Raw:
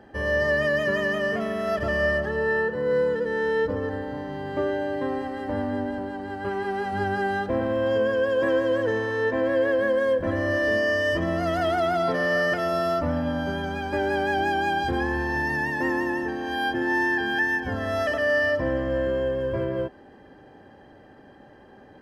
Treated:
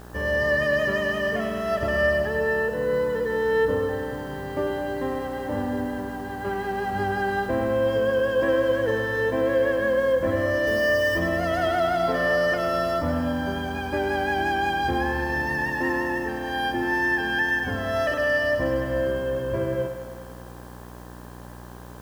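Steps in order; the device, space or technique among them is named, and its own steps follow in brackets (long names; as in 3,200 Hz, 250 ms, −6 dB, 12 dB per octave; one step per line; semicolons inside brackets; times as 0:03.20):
video cassette with head-switching buzz (hum with harmonics 60 Hz, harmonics 29, −43 dBFS −4 dB per octave; white noise bed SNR 31 dB)
0:10.67–0:11.19: high-shelf EQ 9,900 Hz +11.5 dB
feedback echo with a high-pass in the loop 101 ms, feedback 70%, high-pass 160 Hz, level −9.5 dB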